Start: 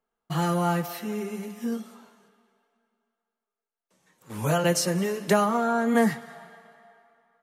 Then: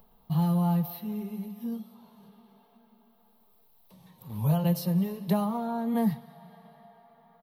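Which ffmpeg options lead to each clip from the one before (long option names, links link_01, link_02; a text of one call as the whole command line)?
ffmpeg -i in.wav -af "acompressor=mode=upward:threshold=-36dB:ratio=2.5,firequalizer=gain_entry='entry(180,0);entry(290,-15);entry(960,-8);entry(1400,-23);entry(3900,-9);entry(6900,-28);entry(13000,-1)':delay=0.05:min_phase=1,volume=3dB" out.wav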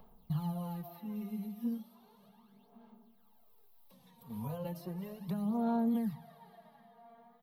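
ffmpeg -i in.wav -filter_complex "[0:a]acrossover=split=570|2000[link_01][link_02][link_03];[link_01]acompressor=threshold=-29dB:ratio=4[link_04];[link_02]acompressor=threshold=-43dB:ratio=4[link_05];[link_03]acompressor=threshold=-54dB:ratio=4[link_06];[link_04][link_05][link_06]amix=inputs=3:normalize=0,aphaser=in_gain=1:out_gain=1:delay=4.3:decay=0.64:speed=0.35:type=sinusoidal,bandreject=frequency=55.45:width_type=h:width=4,bandreject=frequency=110.9:width_type=h:width=4,bandreject=frequency=166.35:width_type=h:width=4,volume=-6.5dB" out.wav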